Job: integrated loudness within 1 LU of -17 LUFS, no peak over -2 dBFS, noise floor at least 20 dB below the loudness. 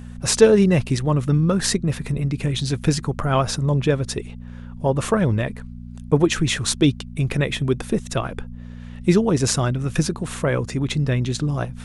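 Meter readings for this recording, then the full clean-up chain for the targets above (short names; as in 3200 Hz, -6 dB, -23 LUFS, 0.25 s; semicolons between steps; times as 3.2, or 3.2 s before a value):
hum 60 Hz; harmonics up to 240 Hz; hum level -33 dBFS; loudness -21.0 LUFS; peak -1.0 dBFS; loudness target -17.0 LUFS
-> de-hum 60 Hz, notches 4; gain +4 dB; limiter -2 dBFS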